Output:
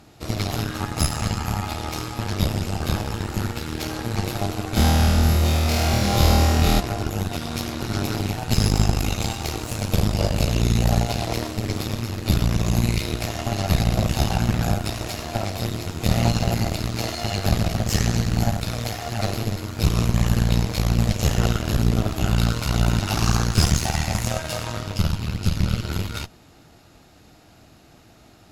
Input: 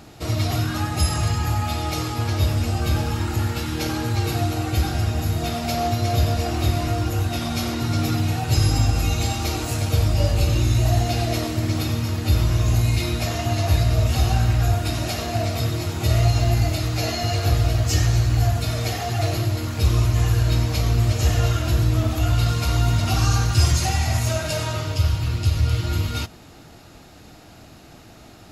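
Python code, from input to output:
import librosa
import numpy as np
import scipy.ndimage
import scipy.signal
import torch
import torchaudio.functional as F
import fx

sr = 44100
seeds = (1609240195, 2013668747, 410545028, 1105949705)

y = fx.cheby_harmonics(x, sr, harmonics=(3, 4), levels_db=(-16, -11), full_scale_db=-6.0)
y = fx.room_flutter(y, sr, wall_m=4.3, rt60_s=1.5, at=(4.75, 6.79), fade=0.02)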